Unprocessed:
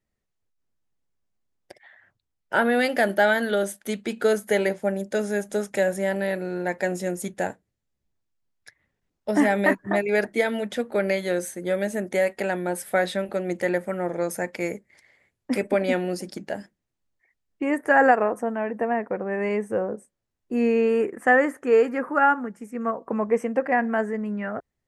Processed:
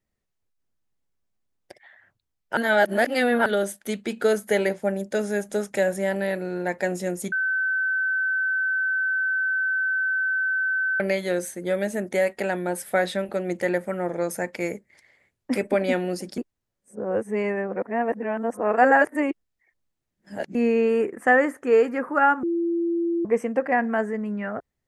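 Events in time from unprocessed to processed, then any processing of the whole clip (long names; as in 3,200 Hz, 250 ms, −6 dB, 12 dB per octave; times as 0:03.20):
0:02.57–0:03.46: reverse
0:07.32–0:11.00: beep over 1,530 Hz −21 dBFS
0:16.38–0:20.55: reverse
0:22.43–0:23.25: beep over 339 Hz −21 dBFS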